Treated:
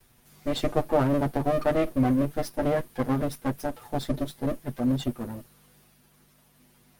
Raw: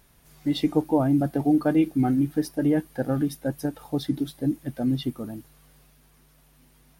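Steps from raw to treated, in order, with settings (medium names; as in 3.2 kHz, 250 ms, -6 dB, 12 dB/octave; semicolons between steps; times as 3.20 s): comb filter that takes the minimum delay 8.2 ms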